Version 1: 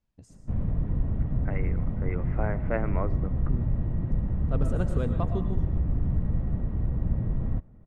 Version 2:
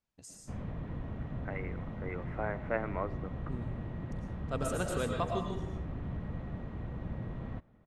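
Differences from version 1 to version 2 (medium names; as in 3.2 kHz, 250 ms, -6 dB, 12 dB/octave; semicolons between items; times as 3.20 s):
first voice: send +7.5 dB; second voice: add treble shelf 2.3 kHz -11.5 dB; master: add tilt EQ +3.5 dB/octave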